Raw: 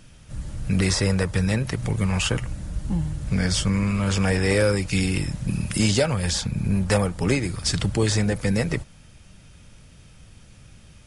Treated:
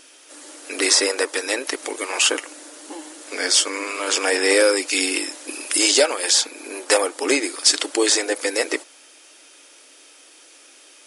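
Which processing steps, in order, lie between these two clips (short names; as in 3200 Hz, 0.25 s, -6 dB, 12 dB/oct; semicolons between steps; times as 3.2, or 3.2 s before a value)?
brick-wall FIR high-pass 270 Hz; high shelf 3700 Hz +7.5 dB; gain +4.5 dB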